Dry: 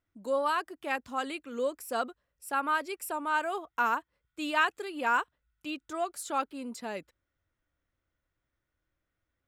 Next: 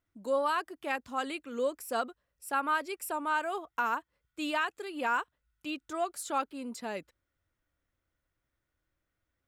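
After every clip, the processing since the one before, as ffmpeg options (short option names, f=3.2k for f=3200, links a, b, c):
-af "alimiter=limit=-19.5dB:level=0:latency=1:release=398"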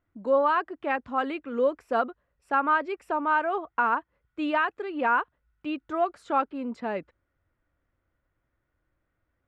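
-af "lowpass=1.9k,volume=7dB"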